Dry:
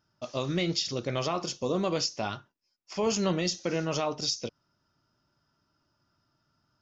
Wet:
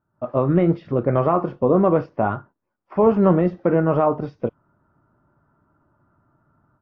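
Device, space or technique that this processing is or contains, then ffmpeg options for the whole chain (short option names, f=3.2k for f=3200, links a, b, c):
action camera in a waterproof case: -af "lowpass=f=1.4k:w=0.5412,lowpass=f=1.4k:w=1.3066,dynaudnorm=f=130:g=3:m=12.5dB" -ar 24000 -c:a aac -b:a 48k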